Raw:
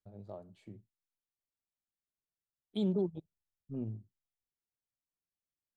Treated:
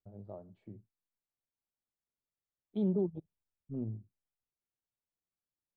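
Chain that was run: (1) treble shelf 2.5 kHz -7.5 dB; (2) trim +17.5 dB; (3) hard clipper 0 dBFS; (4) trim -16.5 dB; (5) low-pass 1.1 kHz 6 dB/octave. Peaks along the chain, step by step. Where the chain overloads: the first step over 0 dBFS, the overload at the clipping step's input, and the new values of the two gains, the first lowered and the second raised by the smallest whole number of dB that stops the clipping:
-23.0 dBFS, -5.5 dBFS, -5.5 dBFS, -22.0 dBFS, -22.5 dBFS; nothing clips

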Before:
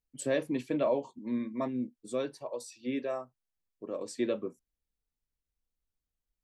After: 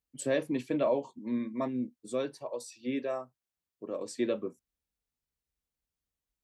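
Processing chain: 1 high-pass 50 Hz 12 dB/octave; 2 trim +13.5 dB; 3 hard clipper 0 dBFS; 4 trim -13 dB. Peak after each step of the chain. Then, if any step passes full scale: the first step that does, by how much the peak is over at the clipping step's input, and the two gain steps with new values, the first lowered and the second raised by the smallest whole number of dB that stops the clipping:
-18.0 dBFS, -4.5 dBFS, -4.5 dBFS, -17.5 dBFS; nothing clips

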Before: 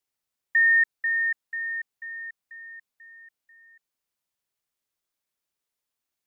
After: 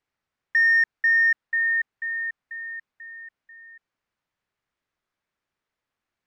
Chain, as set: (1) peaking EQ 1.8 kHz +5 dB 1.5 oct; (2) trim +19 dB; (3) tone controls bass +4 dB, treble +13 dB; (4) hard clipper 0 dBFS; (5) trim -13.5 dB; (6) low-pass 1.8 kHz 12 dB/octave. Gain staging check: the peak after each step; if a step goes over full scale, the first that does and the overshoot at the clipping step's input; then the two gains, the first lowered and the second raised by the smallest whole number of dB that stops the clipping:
-10.0 dBFS, +9.0 dBFS, +9.5 dBFS, 0.0 dBFS, -13.5 dBFS, -14.5 dBFS; step 2, 9.5 dB; step 2 +9 dB, step 5 -3.5 dB

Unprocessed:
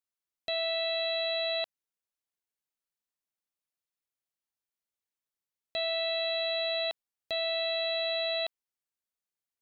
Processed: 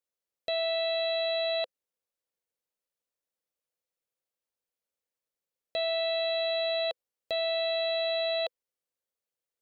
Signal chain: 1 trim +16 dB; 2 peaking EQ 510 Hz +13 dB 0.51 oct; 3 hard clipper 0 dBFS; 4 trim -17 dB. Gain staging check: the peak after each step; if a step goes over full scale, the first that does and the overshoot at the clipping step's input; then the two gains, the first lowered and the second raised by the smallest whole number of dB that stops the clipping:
-8.5 dBFS, -3.5 dBFS, -3.5 dBFS, -20.5 dBFS; nothing clips

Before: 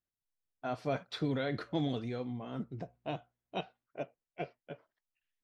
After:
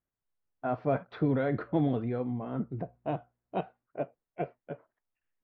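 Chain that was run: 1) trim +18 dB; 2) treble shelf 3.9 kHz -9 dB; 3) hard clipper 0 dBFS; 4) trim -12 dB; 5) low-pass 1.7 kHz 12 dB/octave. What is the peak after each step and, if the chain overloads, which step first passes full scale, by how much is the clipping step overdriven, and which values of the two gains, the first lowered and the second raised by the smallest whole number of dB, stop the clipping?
-2.5 dBFS, -3.0 dBFS, -3.0 dBFS, -15.0 dBFS, -15.5 dBFS; nothing clips

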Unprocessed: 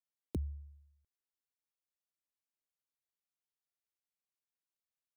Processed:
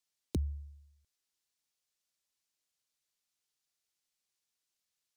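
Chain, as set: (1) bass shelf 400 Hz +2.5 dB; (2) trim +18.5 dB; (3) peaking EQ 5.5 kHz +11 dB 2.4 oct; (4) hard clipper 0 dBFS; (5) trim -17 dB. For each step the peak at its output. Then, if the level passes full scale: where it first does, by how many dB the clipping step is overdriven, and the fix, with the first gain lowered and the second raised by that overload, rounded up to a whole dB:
-25.5 dBFS, -7.0 dBFS, -5.5 dBFS, -5.5 dBFS, -22.5 dBFS; nothing clips

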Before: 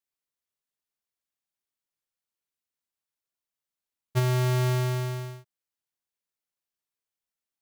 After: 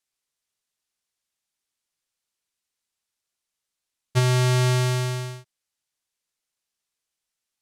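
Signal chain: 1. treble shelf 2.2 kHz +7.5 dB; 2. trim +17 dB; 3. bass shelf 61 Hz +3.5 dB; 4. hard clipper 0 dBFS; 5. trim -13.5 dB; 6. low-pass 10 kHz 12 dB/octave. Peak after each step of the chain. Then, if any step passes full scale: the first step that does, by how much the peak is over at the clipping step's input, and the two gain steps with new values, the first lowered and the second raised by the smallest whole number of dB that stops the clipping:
-9.5 dBFS, +7.5 dBFS, +6.5 dBFS, 0.0 dBFS, -13.5 dBFS, -12.0 dBFS; step 2, 6.5 dB; step 2 +10 dB, step 5 -6.5 dB

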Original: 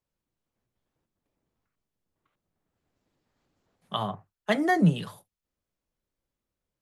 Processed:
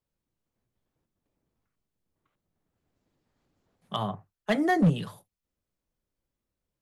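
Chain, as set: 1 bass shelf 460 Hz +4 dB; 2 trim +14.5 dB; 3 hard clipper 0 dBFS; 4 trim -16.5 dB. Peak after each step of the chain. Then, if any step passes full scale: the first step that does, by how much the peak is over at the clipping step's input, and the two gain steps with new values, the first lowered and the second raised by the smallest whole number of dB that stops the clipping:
-8.5 dBFS, +6.0 dBFS, 0.0 dBFS, -16.5 dBFS; step 2, 6.0 dB; step 2 +8.5 dB, step 4 -10.5 dB

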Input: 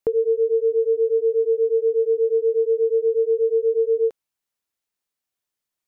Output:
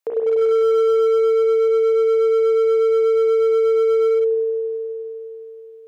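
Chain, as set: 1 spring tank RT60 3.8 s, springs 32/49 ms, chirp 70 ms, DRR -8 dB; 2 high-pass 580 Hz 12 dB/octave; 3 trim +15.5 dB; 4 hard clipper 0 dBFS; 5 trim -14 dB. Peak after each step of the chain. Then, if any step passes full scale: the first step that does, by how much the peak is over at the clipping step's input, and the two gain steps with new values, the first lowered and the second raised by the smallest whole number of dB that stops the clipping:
-4.5 dBFS, -10.5 dBFS, +5.0 dBFS, 0.0 dBFS, -14.0 dBFS; step 3, 5.0 dB; step 3 +10.5 dB, step 5 -9 dB

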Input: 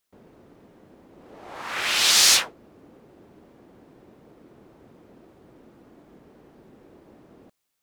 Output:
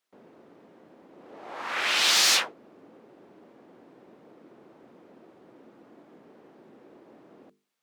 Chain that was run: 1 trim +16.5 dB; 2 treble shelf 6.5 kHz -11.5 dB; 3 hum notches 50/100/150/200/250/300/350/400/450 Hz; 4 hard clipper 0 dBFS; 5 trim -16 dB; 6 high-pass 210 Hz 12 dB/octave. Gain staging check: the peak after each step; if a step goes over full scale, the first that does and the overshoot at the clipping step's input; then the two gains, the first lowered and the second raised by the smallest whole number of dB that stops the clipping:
+12.0 dBFS, +8.0 dBFS, +8.0 dBFS, 0.0 dBFS, -16.0 dBFS, -14.0 dBFS; step 1, 8.0 dB; step 1 +8.5 dB, step 5 -8 dB

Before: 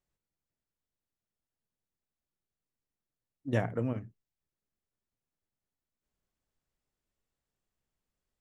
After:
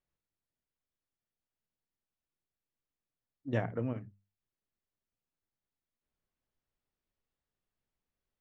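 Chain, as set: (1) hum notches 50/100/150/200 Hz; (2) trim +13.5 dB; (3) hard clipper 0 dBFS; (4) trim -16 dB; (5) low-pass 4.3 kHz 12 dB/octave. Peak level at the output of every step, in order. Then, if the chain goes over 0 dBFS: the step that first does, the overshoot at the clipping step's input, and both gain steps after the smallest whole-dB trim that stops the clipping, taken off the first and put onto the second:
-15.5 dBFS, -2.0 dBFS, -2.0 dBFS, -18.0 dBFS, -18.0 dBFS; nothing clips

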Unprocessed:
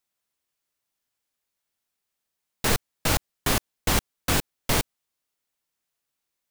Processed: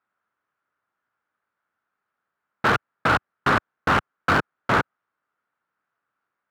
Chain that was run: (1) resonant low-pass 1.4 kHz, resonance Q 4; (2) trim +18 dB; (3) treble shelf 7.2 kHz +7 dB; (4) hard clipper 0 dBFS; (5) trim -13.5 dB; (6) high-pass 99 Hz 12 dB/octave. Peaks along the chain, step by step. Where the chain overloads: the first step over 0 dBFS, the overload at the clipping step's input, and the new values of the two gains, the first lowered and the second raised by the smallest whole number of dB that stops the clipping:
-8.5 dBFS, +9.5 dBFS, +9.5 dBFS, 0.0 dBFS, -13.5 dBFS, -8.5 dBFS; step 2, 9.5 dB; step 2 +8 dB, step 5 -3.5 dB

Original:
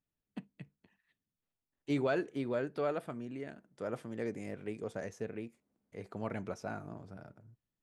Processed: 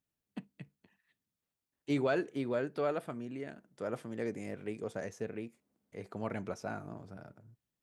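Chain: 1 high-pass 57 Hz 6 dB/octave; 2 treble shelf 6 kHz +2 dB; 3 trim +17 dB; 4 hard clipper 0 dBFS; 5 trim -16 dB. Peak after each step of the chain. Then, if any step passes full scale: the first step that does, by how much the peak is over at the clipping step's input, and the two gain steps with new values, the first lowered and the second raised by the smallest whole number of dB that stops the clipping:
-20.0 dBFS, -20.0 dBFS, -3.0 dBFS, -3.0 dBFS, -19.0 dBFS; nothing clips

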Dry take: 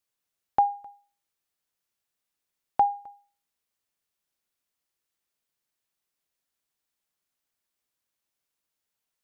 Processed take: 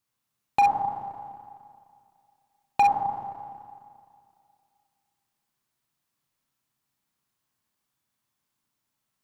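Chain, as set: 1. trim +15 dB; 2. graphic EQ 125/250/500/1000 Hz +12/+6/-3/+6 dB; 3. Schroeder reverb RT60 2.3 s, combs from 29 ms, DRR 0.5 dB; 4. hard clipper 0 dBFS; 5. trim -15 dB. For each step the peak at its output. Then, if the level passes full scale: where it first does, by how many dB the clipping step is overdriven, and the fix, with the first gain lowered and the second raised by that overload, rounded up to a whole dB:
+3.5 dBFS, +8.0 dBFS, +8.0 dBFS, 0.0 dBFS, -15.0 dBFS; step 1, 8.0 dB; step 1 +7 dB, step 5 -7 dB

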